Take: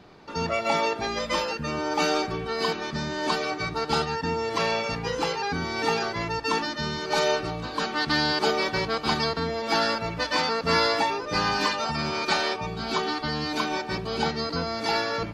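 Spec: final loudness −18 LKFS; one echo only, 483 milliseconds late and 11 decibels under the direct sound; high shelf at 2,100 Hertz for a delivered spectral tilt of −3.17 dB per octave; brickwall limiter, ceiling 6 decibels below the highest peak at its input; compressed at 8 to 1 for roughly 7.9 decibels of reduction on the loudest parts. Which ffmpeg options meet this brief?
ffmpeg -i in.wav -af "highshelf=frequency=2100:gain=6.5,acompressor=threshold=-25dB:ratio=8,alimiter=limit=-19.5dB:level=0:latency=1,aecho=1:1:483:0.282,volume=10.5dB" out.wav

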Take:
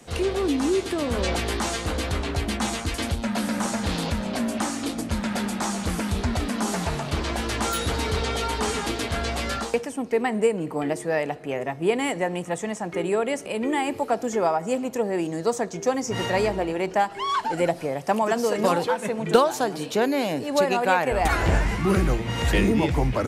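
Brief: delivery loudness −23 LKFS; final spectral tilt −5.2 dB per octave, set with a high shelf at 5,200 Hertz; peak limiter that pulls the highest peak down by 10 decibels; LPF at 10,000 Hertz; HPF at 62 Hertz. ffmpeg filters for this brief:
ffmpeg -i in.wav -af "highpass=62,lowpass=10000,highshelf=frequency=5200:gain=-4.5,volume=3.5dB,alimiter=limit=-11.5dB:level=0:latency=1" out.wav

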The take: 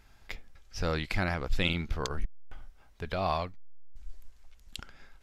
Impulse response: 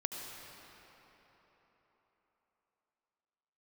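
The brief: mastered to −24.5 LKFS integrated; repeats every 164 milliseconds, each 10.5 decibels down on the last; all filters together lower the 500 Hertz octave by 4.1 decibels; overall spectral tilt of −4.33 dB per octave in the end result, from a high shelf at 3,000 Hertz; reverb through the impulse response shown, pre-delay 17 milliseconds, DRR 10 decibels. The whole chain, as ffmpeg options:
-filter_complex "[0:a]equalizer=frequency=500:width_type=o:gain=-5.5,highshelf=frequency=3000:gain=4,aecho=1:1:164|328|492:0.299|0.0896|0.0269,asplit=2[link_01][link_02];[1:a]atrim=start_sample=2205,adelay=17[link_03];[link_02][link_03]afir=irnorm=-1:irlink=0,volume=-11.5dB[link_04];[link_01][link_04]amix=inputs=2:normalize=0,volume=9dB"

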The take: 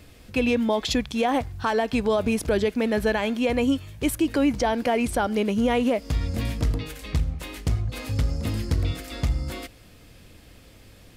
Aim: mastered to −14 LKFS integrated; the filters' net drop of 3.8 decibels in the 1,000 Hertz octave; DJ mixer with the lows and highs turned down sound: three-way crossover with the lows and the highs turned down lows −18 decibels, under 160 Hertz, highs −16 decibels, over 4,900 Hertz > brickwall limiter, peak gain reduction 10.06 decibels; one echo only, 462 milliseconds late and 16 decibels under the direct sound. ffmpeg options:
ffmpeg -i in.wav -filter_complex "[0:a]acrossover=split=160 4900:gain=0.126 1 0.158[link_01][link_02][link_03];[link_01][link_02][link_03]amix=inputs=3:normalize=0,equalizer=frequency=1000:width_type=o:gain=-5.5,aecho=1:1:462:0.158,volume=18.5dB,alimiter=limit=-4dB:level=0:latency=1" out.wav

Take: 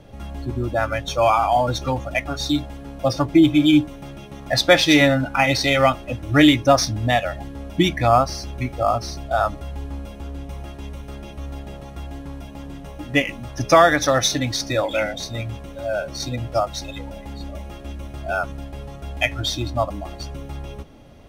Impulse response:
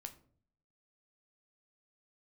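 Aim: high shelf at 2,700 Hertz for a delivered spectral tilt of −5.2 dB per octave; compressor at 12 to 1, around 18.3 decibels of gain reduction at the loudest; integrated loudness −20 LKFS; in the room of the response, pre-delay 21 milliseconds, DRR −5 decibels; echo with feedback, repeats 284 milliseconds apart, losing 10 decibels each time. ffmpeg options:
-filter_complex "[0:a]highshelf=frequency=2700:gain=-9,acompressor=threshold=-28dB:ratio=12,aecho=1:1:284|568|852|1136:0.316|0.101|0.0324|0.0104,asplit=2[link_01][link_02];[1:a]atrim=start_sample=2205,adelay=21[link_03];[link_02][link_03]afir=irnorm=-1:irlink=0,volume=10dB[link_04];[link_01][link_04]amix=inputs=2:normalize=0,volume=7.5dB"

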